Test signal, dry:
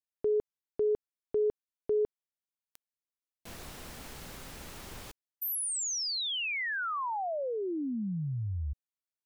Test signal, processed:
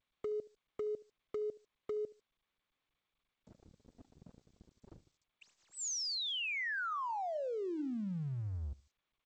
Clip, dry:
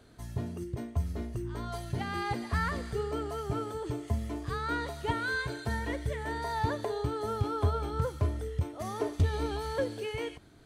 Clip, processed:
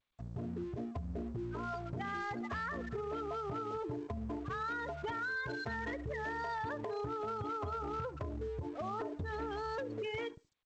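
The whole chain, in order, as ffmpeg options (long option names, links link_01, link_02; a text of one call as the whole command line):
ffmpeg -i in.wav -filter_complex "[0:a]bandreject=frequency=319.9:width_type=h:width=4,bandreject=frequency=639.8:width_type=h:width=4,bandreject=frequency=959.7:width_type=h:width=4,bandreject=frequency=1279.6:width_type=h:width=4,bandreject=frequency=1599.5:width_type=h:width=4,bandreject=frequency=1919.4:width_type=h:width=4,bandreject=frequency=2239.3:width_type=h:width=4,bandreject=frequency=2559.2:width_type=h:width=4,bandreject=frequency=2879.1:width_type=h:width=4,bandreject=frequency=3199:width_type=h:width=4,bandreject=frequency=3518.9:width_type=h:width=4,afftfilt=real='re*gte(hypot(re,im),0.02)':imag='im*gte(hypot(re,im),0.02)':win_size=1024:overlap=0.75,highpass=frequency=160:poles=1,equalizer=frequency=1500:width_type=o:width=0.91:gain=5.5,acontrast=28,aeval=exprs='sgn(val(0))*max(abs(val(0))-0.00251,0)':channel_layout=same,acompressor=threshold=-39dB:ratio=12:attack=34:release=61:knee=6:detection=rms,asoftclip=type=hard:threshold=-34.5dB,asplit=2[link_01][link_02];[link_02]adelay=73,lowpass=frequency=2200:poles=1,volume=-20dB,asplit=2[link_03][link_04];[link_04]adelay=73,lowpass=frequency=2200:poles=1,volume=0.26[link_05];[link_03][link_05]amix=inputs=2:normalize=0[link_06];[link_01][link_06]amix=inputs=2:normalize=0,volume=1dB" -ar 16000 -c:a g722 out.g722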